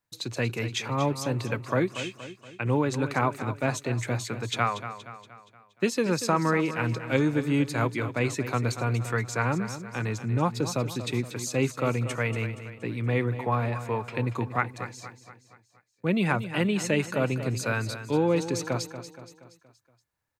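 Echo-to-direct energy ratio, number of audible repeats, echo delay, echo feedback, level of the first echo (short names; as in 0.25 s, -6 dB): -10.5 dB, 4, 0.236 s, 49%, -11.5 dB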